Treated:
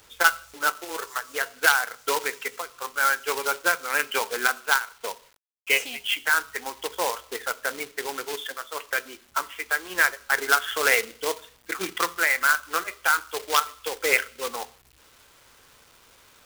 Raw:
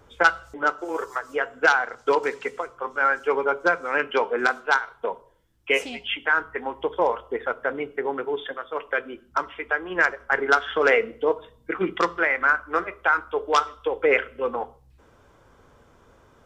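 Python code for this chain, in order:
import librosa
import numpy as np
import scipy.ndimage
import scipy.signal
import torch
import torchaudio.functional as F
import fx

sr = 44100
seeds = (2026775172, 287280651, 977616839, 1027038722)

y = fx.quant_companded(x, sr, bits=4)
y = fx.tilt_shelf(y, sr, db=-7.0, hz=1100.0)
y = y * librosa.db_to_amplitude(-3.0)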